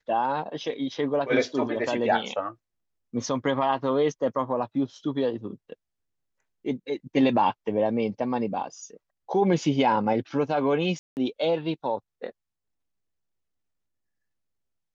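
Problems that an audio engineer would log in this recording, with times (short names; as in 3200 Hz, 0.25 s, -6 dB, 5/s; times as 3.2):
10.99–11.17 gap 0.179 s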